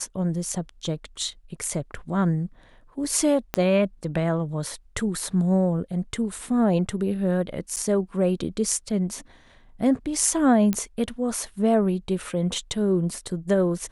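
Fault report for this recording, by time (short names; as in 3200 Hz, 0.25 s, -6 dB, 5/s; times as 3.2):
3.54 pop -9 dBFS
7.76–7.77 gap 8.1 ms
10.73 pop -11 dBFS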